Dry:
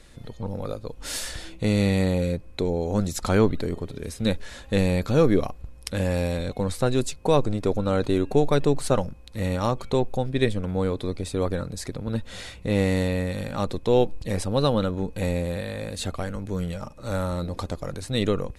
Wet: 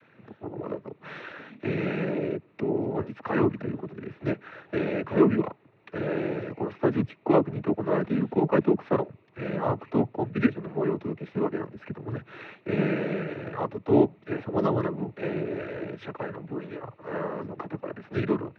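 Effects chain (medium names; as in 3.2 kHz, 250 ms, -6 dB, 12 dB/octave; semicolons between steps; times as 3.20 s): mistuned SSB -110 Hz 230–2500 Hz; noise-vocoded speech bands 12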